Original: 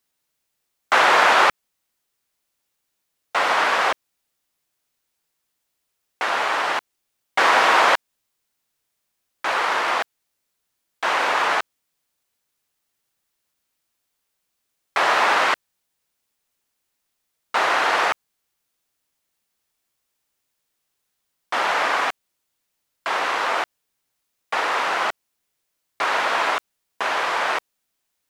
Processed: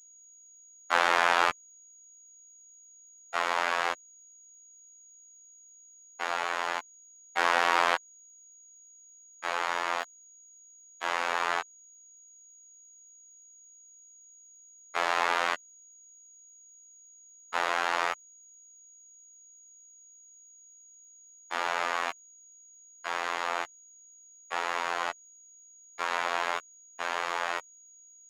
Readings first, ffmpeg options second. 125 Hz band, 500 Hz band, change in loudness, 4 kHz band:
n/a, -9.5 dB, -9.5 dB, -9.5 dB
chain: -af "aeval=exprs='val(0)+0.00708*sin(2*PI*6700*n/s)':c=same,afftfilt=real='hypot(re,im)*cos(PI*b)':imag='0':win_size=2048:overlap=0.75,volume=-6dB"

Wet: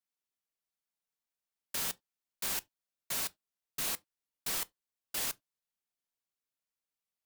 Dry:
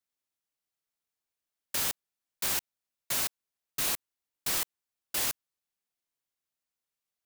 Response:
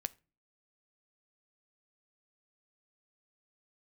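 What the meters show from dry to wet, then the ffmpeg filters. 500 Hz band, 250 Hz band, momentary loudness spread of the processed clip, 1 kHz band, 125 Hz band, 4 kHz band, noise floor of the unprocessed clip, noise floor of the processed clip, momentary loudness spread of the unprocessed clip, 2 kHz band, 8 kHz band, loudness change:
-4.5 dB, -4.5 dB, 7 LU, -4.5 dB, -5.5 dB, -4.5 dB, under -85 dBFS, under -85 dBFS, 7 LU, -5.0 dB, -4.5 dB, -5.0 dB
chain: -filter_complex "[1:a]atrim=start_sample=2205,afade=t=out:st=0.23:d=0.01,atrim=end_sample=10584,asetrate=83790,aresample=44100[a];[0:a][a]afir=irnorm=-1:irlink=0,volume=2dB"

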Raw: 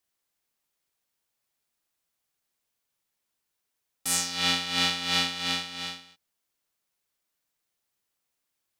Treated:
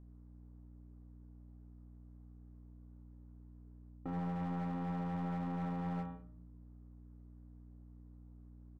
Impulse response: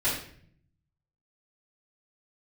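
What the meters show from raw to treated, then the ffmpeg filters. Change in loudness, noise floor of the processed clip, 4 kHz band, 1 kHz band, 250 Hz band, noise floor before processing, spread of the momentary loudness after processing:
-13.5 dB, -56 dBFS, under -35 dB, -7.5 dB, +1.0 dB, -82 dBFS, 19 LU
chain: -filter_complex "[0:a]lowpass=f=1.1k:w=0.5412,lowpass=f=1.1k:w=1.3066,lowshelf=f=510:t=q:w=1.5:g=7,bandreject=f=55.52:t=h:w=4,bandreject=f=111.04:t=h:w=4,bandreject=f=166.56:t=h:w=4,bandreject=f=222.08:t=h:w=4,bandreject=f=277.6:t=h:w=4,bandreject=f=333.12:t=h:w=4,bandreject=f=388.64:t=h:w=4,bandreject=f=444.16:t=h:w=4,bandreject=f=499.68:t=h:w=4,bandreject=f=555.2:t=h:w=4,bandreject=f=610.72:t=h:w=4,bandreject=f=666.24:t=h:w=4,bandreject=f=721.76:t=h:w=4,bandreject=f=777.28:t=h:w=4,bandreject=f=832.8:t=h:w=4,bandreject=f=888.32:t=h:w=4,bandreject=f=943.84:t=h:w=4,bandreject=f=999.36:t=h:w=4,bandreject=f=1.05488k:t=h:w=4,bandreject=f=1.1104k:t=h:w=4,bandreject=f=1.16592k:t=h:w=4,bandreject=f=1.22144k:t=h:w=4,bandreject=f=1.27696k:t=h:w=4,bandreject=f=1.33248k:t=h:w=4,bandreject=f=1.388k:t=h:w=4,bandreject=f=1.44352k:t=h:w=4,bandreject=f=1.49904k:t=h:w=4,bandreject=f=1.55456k:t=h:w=4,bandreject=f=1.61008k:t=h:w=4,bandreject=f=1.6656k:t=h:w=4,bandreject=f=1.72112k:t=h:w=4,bandreject=f=1.77664k:t=h:w=4,areverse,acompressor=threshold=-42dB:ratio=6,areverse,aecho=1:1:24|74:0.562|0.422,aeval=exprs='val(0)+0.000562*(sin(2*PI*60*n/s)+sin(2*PI*2*60*n/s)/2+sin(2*PI*3*60*n/s)/3+sin(2*PI*4*60*n/s)/4+sin(2*PI*5*60*n/s)/5)':c=same,alimiter=level_in=17dB:limit=-24dB:level=0:latency=1:release=21,volume=-17dB,asplit=2[a][b];[1:a]atrim=start_sample=2205[c];[b][c]afir=irnorm=-1:irlink=0,volume=-24dB[d];[a][d]amix=inputs=2:normalize=0,aeval=exprs='clip(val(0),-1,0.00422)':c=same,volume=10.5dB"

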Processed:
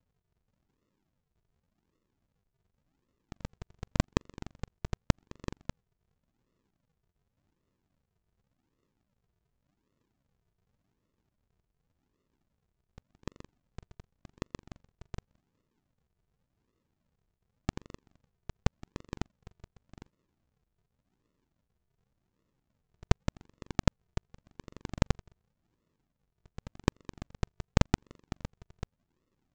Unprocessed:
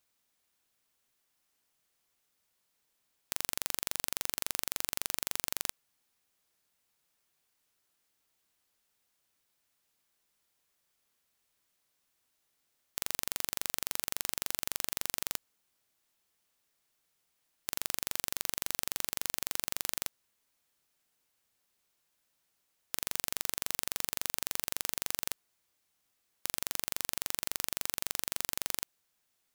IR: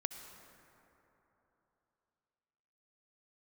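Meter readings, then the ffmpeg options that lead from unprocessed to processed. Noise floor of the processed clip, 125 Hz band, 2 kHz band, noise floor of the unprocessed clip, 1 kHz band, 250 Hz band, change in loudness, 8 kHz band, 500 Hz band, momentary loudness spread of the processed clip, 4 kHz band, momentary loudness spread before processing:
-83 dBFS, +20.0 dB, -5.0 dB, -78 dBFS, +1.0 dB, +14.5 dB, -2.0 dB, -16.5 dB, +7.0 dB, 21 LU, -10.0 dB, 4 LU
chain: -af "lowshelf=f=470:g=-9,aresample=16000,acrusher=samples=40:mix=1:aa=0.000001:lfo=1:lforange=40:lforate=0.88,aresample=44100,volume=5dB"

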